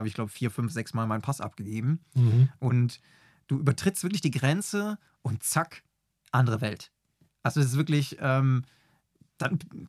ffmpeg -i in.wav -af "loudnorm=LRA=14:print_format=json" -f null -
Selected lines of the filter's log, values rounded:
"input_i" : "-27.9",
"input_tp" : "-8.9",
"input_lra" : "2.4",
"input_thresh" : "-38.8",